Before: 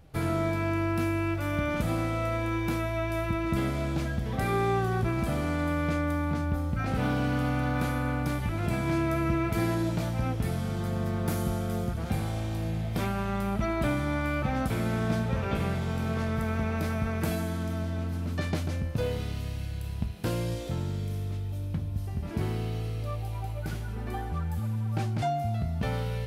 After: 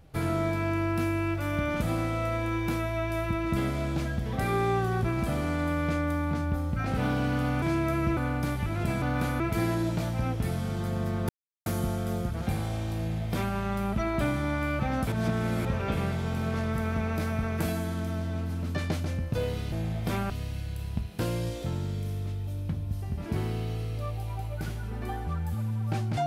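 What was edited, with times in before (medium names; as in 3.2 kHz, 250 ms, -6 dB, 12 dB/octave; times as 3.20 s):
7.62–8.00 s: swap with 8.85–9.40 s
11.29 s: insert silence 0.37 s
12.61–13.19 s: copy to 19.35 s
14.75–15.28 s: reverse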